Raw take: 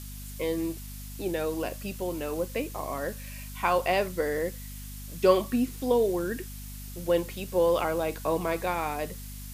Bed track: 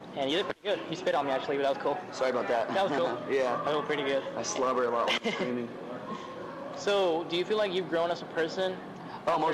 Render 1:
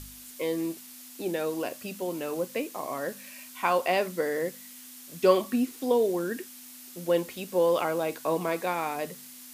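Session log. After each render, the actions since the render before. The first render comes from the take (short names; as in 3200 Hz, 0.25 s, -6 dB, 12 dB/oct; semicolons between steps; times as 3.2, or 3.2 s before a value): de-hum 50 Hz, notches 4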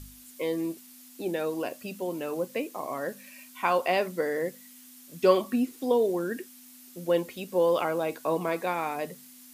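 denoiser 6 dB, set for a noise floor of -47 dBFS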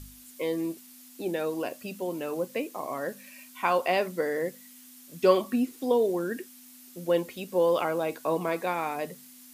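nothing audible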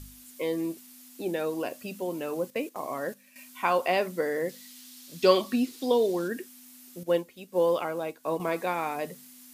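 2.5–3.36 gate -41 dBFS, range -10 dB; 4.49–6.28 bell 4200 Hz +9.5 dB 1.2 oct; 7.03–8.4 upward expander, over -44 dBFS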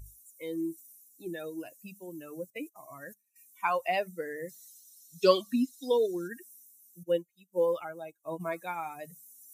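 per-bin expansion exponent 2; reverse; upward compressor, threshold -46 dBFS; reverse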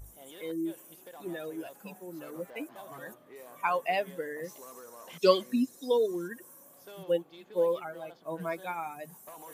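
add bed track -21.5 dB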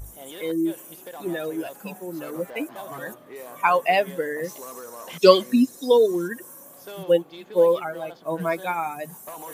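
gain +9.5 dB; limiter -1 dBFS, peak gain reduction 1 dB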